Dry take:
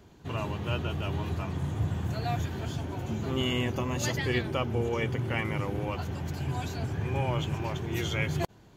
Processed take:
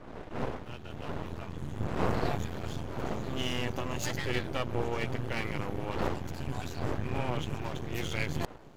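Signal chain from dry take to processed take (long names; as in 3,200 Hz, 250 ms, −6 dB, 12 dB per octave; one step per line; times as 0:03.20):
fade in at the beginning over 2.25 s
wind on the microphone 580 Hz −36 dBFS
half-wave rectification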